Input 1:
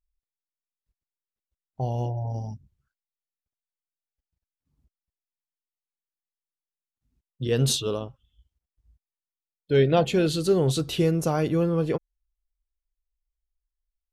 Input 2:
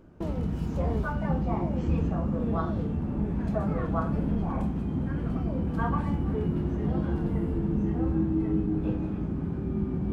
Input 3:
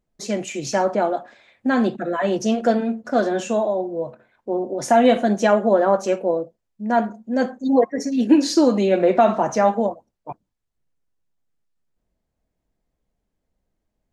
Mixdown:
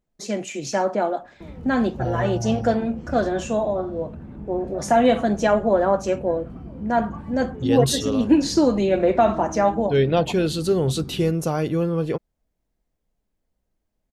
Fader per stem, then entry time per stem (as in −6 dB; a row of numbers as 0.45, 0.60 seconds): +1.0, −8.0, −2.0 decibels; 0.20, 1.20, 0.00 seconds